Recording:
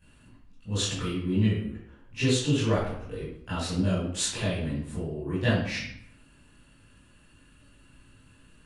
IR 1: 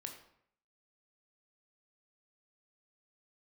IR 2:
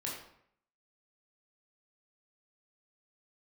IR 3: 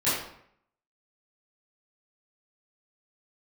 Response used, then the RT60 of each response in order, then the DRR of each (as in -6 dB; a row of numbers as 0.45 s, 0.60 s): 3; 0.65 s, 0.65 s, 0.65 s; 3.0 dB, -4.5 dB, -14.0 dB